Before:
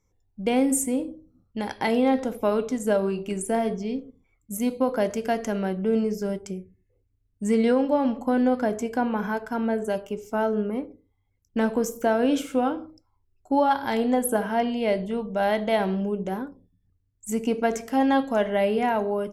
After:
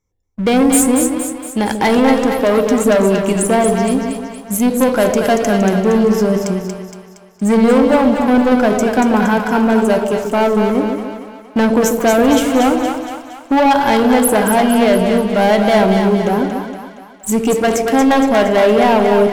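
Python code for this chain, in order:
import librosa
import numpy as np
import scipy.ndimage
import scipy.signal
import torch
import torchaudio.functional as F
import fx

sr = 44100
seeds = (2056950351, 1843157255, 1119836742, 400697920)

y = fx.leveller(x, sr, passes=3)
y = fx.echo_split(y, sr, split_hz=660.0, low_ms=142, high_ms=233, feedback_pct=52, wet_db=-5.0)
y = y * 10.0 ** (3.0 / 20.0)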